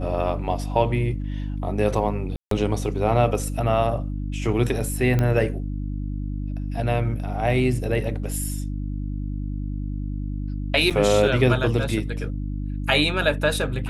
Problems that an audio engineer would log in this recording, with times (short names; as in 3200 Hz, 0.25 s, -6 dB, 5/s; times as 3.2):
hum 50 Hz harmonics 6 -28 dBFS
2.36–2.51 gap 0.153 s
5.19 pop -11 dBFS
10.9–10.91 gap 6.8 ms